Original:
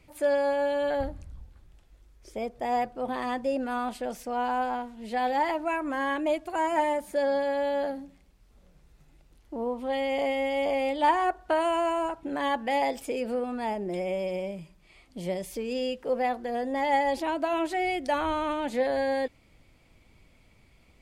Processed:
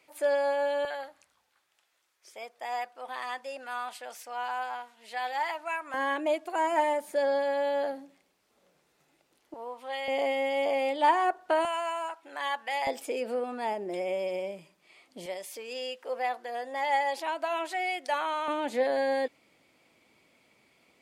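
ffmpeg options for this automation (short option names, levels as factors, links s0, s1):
-af "asetnsamples=n=441:p=0,asendcmd='0.85 highpass f 1000;5.94 highpass f 360;9.54 highpass f 860;10.08 highpass f 340;11.65 highpass f 970;12.87 highpass f 340;15.26 highpass f 700;18.48 highpass f 280',highpass=470"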